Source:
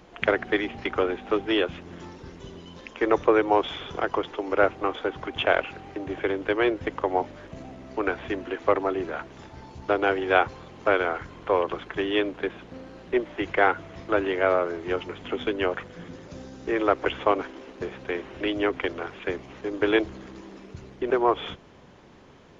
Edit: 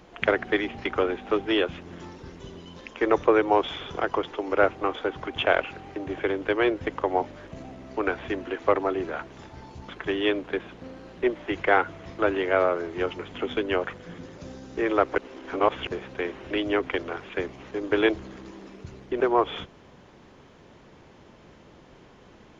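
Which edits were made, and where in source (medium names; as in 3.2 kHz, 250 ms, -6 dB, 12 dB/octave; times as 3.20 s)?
9.89–11.79 s: delete
17.08–17.77 s: reverse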